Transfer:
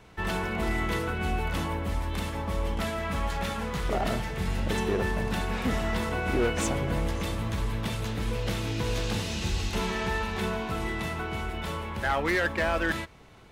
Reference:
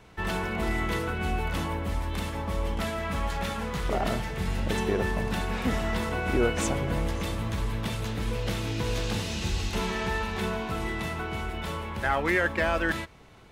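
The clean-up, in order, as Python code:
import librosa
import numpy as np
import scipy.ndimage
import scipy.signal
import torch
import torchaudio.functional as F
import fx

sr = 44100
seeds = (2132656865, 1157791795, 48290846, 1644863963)

y = fx.fix_declip(x, sr, threshold_db=-20.0)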